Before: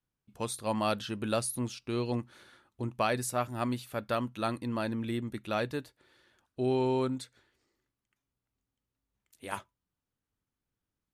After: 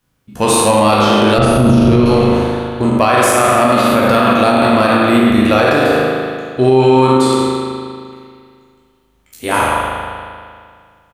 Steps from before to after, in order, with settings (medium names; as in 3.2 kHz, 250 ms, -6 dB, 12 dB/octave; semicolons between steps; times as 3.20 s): spectral sustain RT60 1.12 s; in parallel at -9.5 dB: one-sided clip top -31.5 dBFS; 1.38–2.06 s: on the sum: RIAA curve playback; doubling 13 ms -11 dB; spring tank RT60 2.1 s, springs 38 ms, chirp 50 ms, DRR -1.5 dB; loudness maximiser +17.5 dB; trim -1 dB